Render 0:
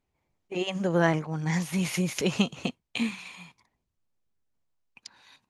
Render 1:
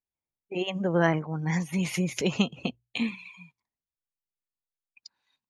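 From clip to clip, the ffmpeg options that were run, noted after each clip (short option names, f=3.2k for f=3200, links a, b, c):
-af "afftdn=nr=21:nf=-42,bandreject=f=60:t=h:w=6,bandreject=f=120:t=h:w=6"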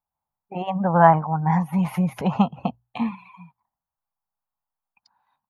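-af "firequalizer=gain_entry='entry(200,0);entry(360,-13);entry(810,12);entry(2100,-12);entry(7100,-26);entry(11000,-5)':delay=0.05:min_phase=1,volume=6.5dB"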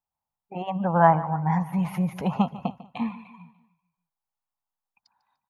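-af "aecho=1:1:148|296|444|592:0.141|0.0636|0.0286|0.0129,volume=-3.5dB"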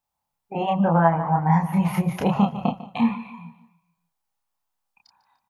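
-filter_complex "[0:a]acompressor=threshold=-22dB:ratio=6,asplit=2[a][b];[b]adelay=30,volume=-2dB[c];[a][c]amix=inputs=2:normalize=0,volume=5.5dB"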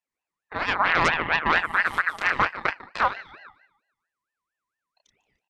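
-af "aresample=22050,aresample=44100,aeval=exprs='0.596*(cos(1*acos(clip(val(0)/0.596,-1,1)))-cos(1*PI/2))+0.15*(cos(8*acos(clip(val(0)/0.596,-1,1)))-cos(8*PI/2))':c=same,aeval=exprs='val(0)*sin(2*PI*1400*n/s+1400*0.3/4.4*sin(2*PI*4.4*n/s))':c=same,volume=-4dB"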